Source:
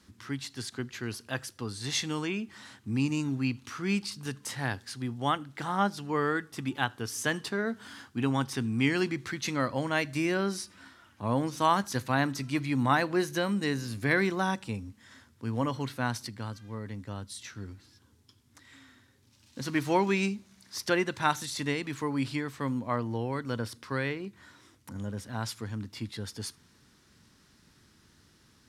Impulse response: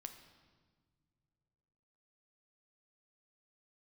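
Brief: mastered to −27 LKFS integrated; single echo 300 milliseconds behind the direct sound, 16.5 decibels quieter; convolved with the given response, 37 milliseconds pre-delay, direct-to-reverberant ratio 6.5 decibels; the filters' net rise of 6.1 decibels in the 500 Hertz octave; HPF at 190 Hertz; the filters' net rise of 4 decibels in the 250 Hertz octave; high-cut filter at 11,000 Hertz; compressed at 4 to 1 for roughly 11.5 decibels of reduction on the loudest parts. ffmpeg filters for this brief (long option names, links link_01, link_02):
-filter_complex "[0:a]highpass=190,lowpass=11000,equalizer=frequency=250:width_type=o:gain=4.5,equalizer=frequency=500:width_type=o:gain=6.5,acompressor=threshold=-31dB:ratio=4,aecho=1:1:300:0.15,asplit=2[link_01][link_02];[1:a]atrim=start_sample=2205,adelay=37[link_03];[link_02][link_03]afir=irnorm=-1:irlink=0,volume=-1.5dB[link_04];[link_01][link_04]amix=inputs=2:normalize=0,volume=8dB"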